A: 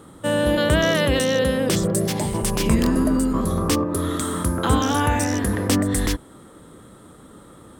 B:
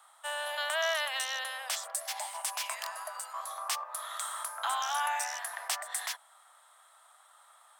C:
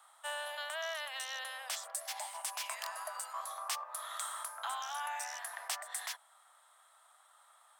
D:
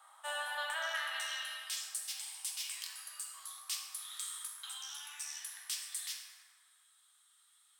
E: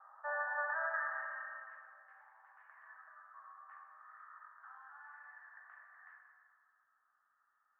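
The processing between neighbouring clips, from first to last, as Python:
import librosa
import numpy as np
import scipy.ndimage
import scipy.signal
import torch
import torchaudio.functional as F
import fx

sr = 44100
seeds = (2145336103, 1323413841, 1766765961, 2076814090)

y1 = scipy.signal.sosfilt(scipy.signal.butter(12, 660.0, 'highpass', fs=sr, output='sos'), x)
y1 = F.gain(torch.from_numpy(y1), -7.5).numpy()
y2 = fx.rider(y1, sr, range_db=4, speed_s=0.5)
y2 = F.gain(torch.from_numpy(y2), -5.5).numpy()
y3 = fx.filter_sweep_highpass(y2, sr, from_hz=650.0, to_hz=3400.0, start_s=0.38, end_s=1.76, q=1.2)
y3 = fx.rev_fdn(y3, sr, rt60_s=2.3, lf_ratio=1.0, hf_ratio=0.4, size_ms=37.0, drr_db=-2.5)
y3 = F.gain(torch.from_numpy(y3), -2.5).numpy()
y4 = scipy.signal.sosfilt(scipy.signal.cheby1(6, 3, 1800.0, 'lowpass', fs=sr, output='sos'), y3)
y4 = F.gain(torch.from_numpy(y4), 3.5).numpy()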